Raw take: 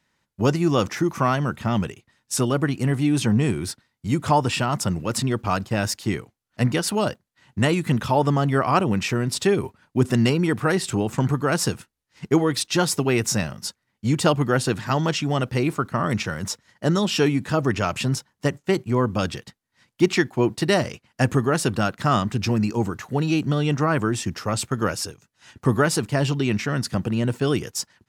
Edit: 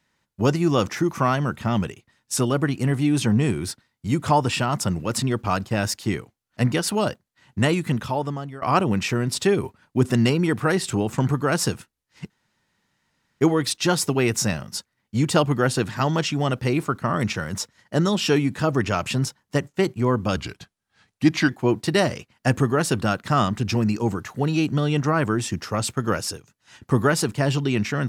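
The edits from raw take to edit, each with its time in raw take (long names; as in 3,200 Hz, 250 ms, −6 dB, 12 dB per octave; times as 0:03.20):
0:07.70–0:08.62: fade out, to −22 dB
0:12.30: splice in room tone 1.10 s
0:19.26–0:20.23: play speed 86%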